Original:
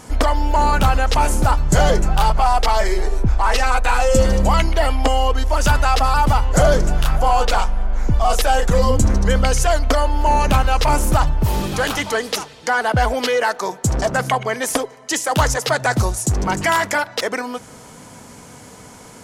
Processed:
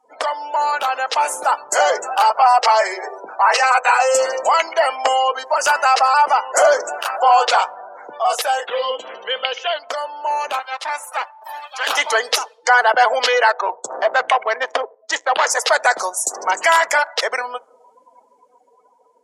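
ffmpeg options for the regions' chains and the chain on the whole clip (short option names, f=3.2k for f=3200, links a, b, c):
-filter_complex "[0:a]asettb=1/sr,asplit=3[a][b][c];[a]atrim=end=1.694[d];[b]atrim=start=1.69:end=7.22,asetpts=PTS-STARTPTS,afade=t=in:d=0.004:c=qsin,afade=t=out:st=5.526:d=0.004:c=qsin,highpass=180,equalizer=f=3.5k:w=4.6:g=-7.5,bandreject=f=50:t=h:w=6,bandreject=f=100:t=h:w=6,bandreject=f=150:t=h:w=6,bandreject=f=200:t=h:w=6,bandreject=f=250:t=h:w=6,bandreject=f=300:t=h:w=6,bandreject=f=350:t=h:w=6,bandreject=f=400:t=h:w=6,bandreject=f=450:t=h:w=6,bandreject=f=500:t=h:w=6[e];[c]atrim=start=7.216[f];[d][e]acrossfade=d=0.004:c1=hsin:c2=qsin[g];[g][f]acrossfade=d=0.004:c1=qsin:c2=hsin,asettb=1/sr,asplit=3[h][i][j];[h]atrim=end=8.674[k];[i]atrim=start=8.67:end=9.79,asetpts=PTS-STARTPTS,afade=t=in:d=0.004:c=qsin,afade=t=out:st=1.116:d=0.004:c=qsin,lowpass=f=3.1k:t=q:w=4.8,equalizer=f=470:t=o:w=0.33:g=6[l];[j]atrim=start=9.786[m];[k][l]acrossfade=d=0.004:c1=hsin:c2=qsin[n];[n][m]acrossfade=d=0.004:c1=qsin:c2=hsin,asettb=1/sr,asplit=3[o][p][q];[o]atrim=end=10.594[r];[p]atrim=start=10.59:end=11.87,asetpts=PTS-STARTPTS,afade=t=in:d=0.004:c=qsin,afade=t=out:st=1.276:d=0.004:c=qsin,highpass=f=670:w=0.5412,highpass=f=670:w=1.3066,aeval=exprs='max(val(0),0)':c=same[s];[q]atrim=start=11.866[t];[r][s]acrossfade=d=0.004:c1=hsin:c2=qsin[u];[u][t]acrossfade=d=0.004:c1=qsin:c2=hsin,asettb=1/sr,asplit=3[v][w][x];[v]atrim=end=13.504[y];[w]atrim=start=13.5:end=15.47,asetpts=PTS-STARTPTS,afade=t=in:d=0.004:c=qsin,afade=t=out:st=1.966:d=0.004:c=qsin,lowpass=f=9.9k:w=0.5412,lowpass=f=9.9k:w=1.3066,volume=12.5dB,asoftclip=hard,volume=-12.5dB,adynamicsmooth=sensitivity=2.5:basefreq=610[z];[x]atrim=start=15.466[aa];[y][z]acrossfade=d=0.004:c1=hsin:c2=qsin[ab];[ab][aa]acrossfade=d=0.004:c1=qsin:c2=hsin,afftdn=nr=34:nf=-34,highpass=f=550:w=0.5412,highpass=f=550:w=1.3066,dynaudnorm=f=310:g=9:m=11.5dB,volume=-1dB"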